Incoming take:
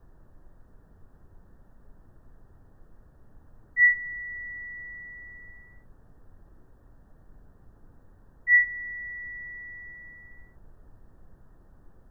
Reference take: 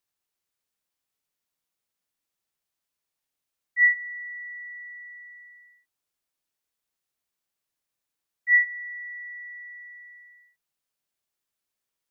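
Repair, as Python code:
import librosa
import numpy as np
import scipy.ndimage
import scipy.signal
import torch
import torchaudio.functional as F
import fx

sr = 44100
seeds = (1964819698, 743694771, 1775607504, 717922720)

y = fx.noise_reduce(x, sr, print_start_s=6.61, print_end_s=7.11, reduce_db=29.0)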